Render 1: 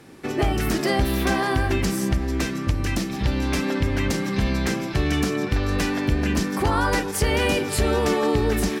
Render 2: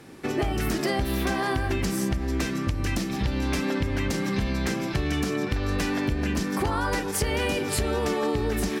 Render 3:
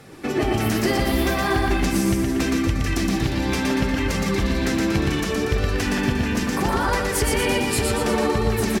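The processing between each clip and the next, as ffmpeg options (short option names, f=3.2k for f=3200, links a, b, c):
-af "acompressor=threshold=-22dB:ratio=6"
-filter_complex "[0:a]asplit=2[a][b];[b]aecho=0:1:118|236|354|472|590|708|826|944:0.708|0.389|0.214|0.118|0.0648|0.0356|0.0196|0.0108[c];[a][c]amix=inputs=2:normalize=0,flanger=delay=1.5:depth=7.9:regen=-41:speed=0.71:shape=sinusoidal,volume=7dB"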